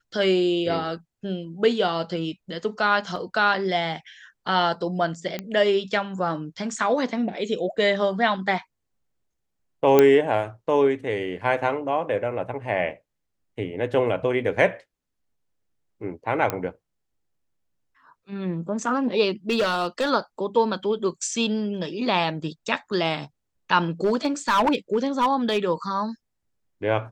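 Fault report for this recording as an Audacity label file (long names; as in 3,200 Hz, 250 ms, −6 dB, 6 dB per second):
3.160000	3.160000	drop-out 3.2 ms
5.390000	5.390000	click −15 dBFS
9.990000	9.990000	click −4 dBFS
16.500000	16.500000	click −9 dBFS
19.490000	20.110000	clipping −17.5 dBFS
24.040000	25.580000	clipping −15.5 dBFS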